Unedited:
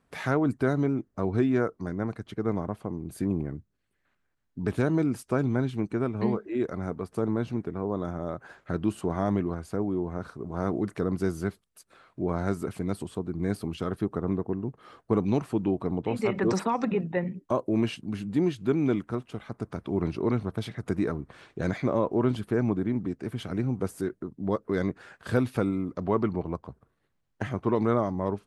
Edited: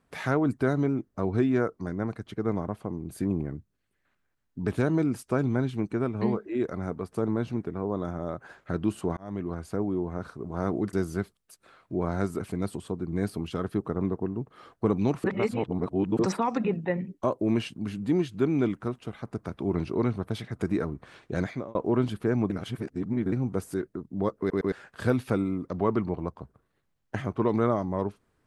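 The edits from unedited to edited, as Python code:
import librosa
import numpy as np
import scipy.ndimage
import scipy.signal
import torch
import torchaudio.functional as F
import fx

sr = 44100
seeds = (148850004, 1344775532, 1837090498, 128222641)

y = fx.edit(x, sr, fx.fade_in_span(start_s=9.17, length_s=0.43),
    fx.cut(start_s=10.93, length_s=0.27),
    fx.reverse_span(start_s=15.51, length_s=0.95),
    fx.fade_out_span(start_s=21.67, length_s=0.35),
    fx.reverse_span(start_s=22.77, length_s=0.82),
    fx.stutter_over(start_s=24.66, slice_s=0.11, count=3), tone=tone)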